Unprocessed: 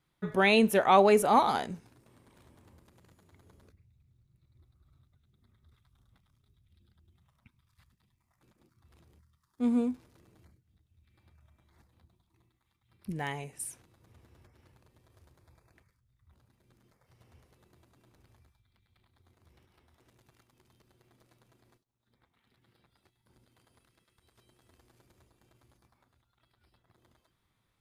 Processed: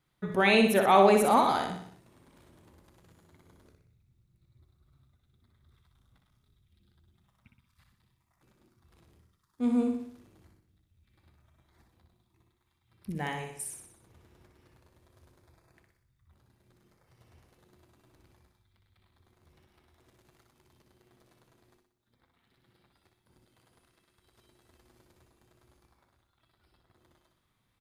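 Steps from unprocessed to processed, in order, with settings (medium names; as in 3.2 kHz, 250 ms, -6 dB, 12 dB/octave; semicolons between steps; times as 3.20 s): feedback delay 61 ms, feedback 51%, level -5.5 dB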